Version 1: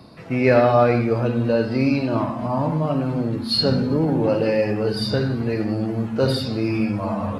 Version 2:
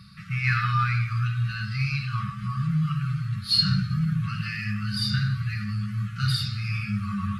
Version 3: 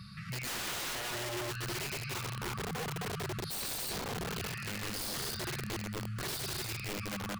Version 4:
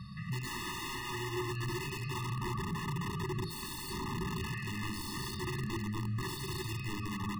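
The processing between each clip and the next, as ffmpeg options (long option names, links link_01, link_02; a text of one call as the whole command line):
ffmpeg -i in.wav -af "afftfilt=real='re*(1-between(b*sr/4096,210,1100))':imag='im*(1-between(b*sr/4096,210,1100))':win_size=4096:overlap=0.75" out.wav
ffmpeg -i in.wav -filter_complex "[0:a]asplit=2[link_01][link_02];[link_02]aecho=0:1:58|69|147|168|283:0.178|0.141|0.119|0.473|0.596[link_03];[link_01][link_03]amix=inputs=2:normalize=0,aeval=exprs='(mod(11.9*val(0)+1,2)-1)/11.9':channel_layout=same,alimiter=level_in=9dB:limit=-24dB:level=0:latency=1:release=72,volume=-9dB" out.wav
ffmpeg -i in.wav -af "highshelf=frequency=3300:gain=-9,bandreject=frequency=50:width_type=h:width=6,bandreject=frequency=100:width_type=h:width=6,bandreject=frequency=150:width_type=h:width=6,bandreject=frequency=200:width_type=h:width=6,bandreject=frequency=250:width_type=h:width=6,bandreject=frequency=300:width_type=h:width=6,bandreject=frequency=350:width_type=h:width=6,bandreject=frequency=400:width_type=h:width=6,afftfilt=real='re*eq(mod(floor(b*sr/1024/420),2),0)':imag='im*eq(mod(floor(b*sr/1024/420),2),0)':win_size=1024:overlap=0.75,volume=4.5dB" out.wav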